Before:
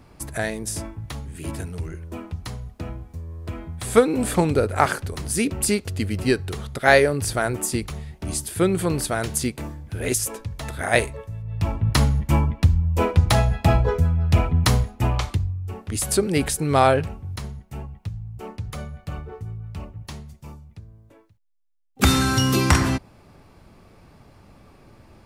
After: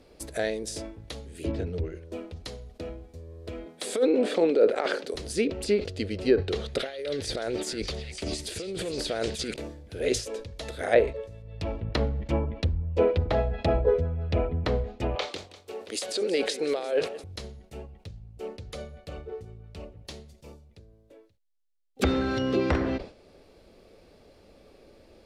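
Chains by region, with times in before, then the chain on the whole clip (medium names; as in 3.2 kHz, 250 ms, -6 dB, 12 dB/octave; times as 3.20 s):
1.44–1.85 s: low-pass 7.5 kHz + bass shelf 380 Hz +9.5 dB
3.66–5.14 s: high-pass 220 Hz 24 dB/octave + compressor with a negative ratio -21 dBFS
6.38–9.54 s: compressor with a negative ratio -28 dBFS + repeats whose band climbs or falls 298 ms, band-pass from 2.4 kHz, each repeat 0.7 oct, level -2 dB
15.15–17.24 s: high-pass 400 Hz + compressor with a negative ratio -25 dBFS + modulated delay 173 ms, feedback 56%, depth 152 cents, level -17 dB
whole clip: low-pass that closes with the level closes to 1.6 kHz, closed at -15 dBFS; graphic EQ 125/500/1000/4000 Hz -10/+12/-8/+7 dB; decay stretcher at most 150 dB/s; trim -6 dB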